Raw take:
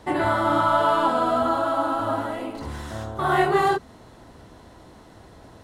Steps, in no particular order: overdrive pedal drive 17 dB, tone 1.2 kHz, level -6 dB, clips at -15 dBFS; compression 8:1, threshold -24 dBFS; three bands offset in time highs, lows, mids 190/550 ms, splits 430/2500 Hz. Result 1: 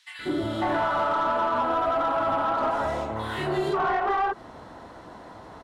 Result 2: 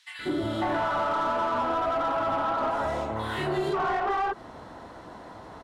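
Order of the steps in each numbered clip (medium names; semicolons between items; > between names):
three bands offset in time > compression > overdrive pedal; three bands offset in time > overdrive pedal > compression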